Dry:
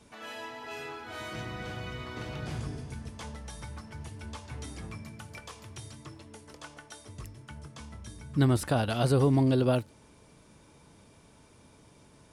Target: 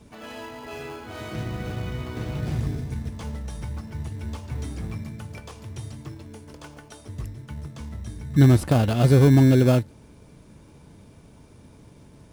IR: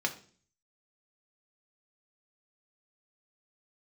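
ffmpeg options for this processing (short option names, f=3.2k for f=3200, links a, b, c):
-filter_complex "[0:a]lowshelf=f=360:g=7.5,asplit=2[a][b];[b]acrusher=samples=23:mix=1:aa=0.000001,volume=-6dB[c];[a][c]amix=inputs=2:normalize=0"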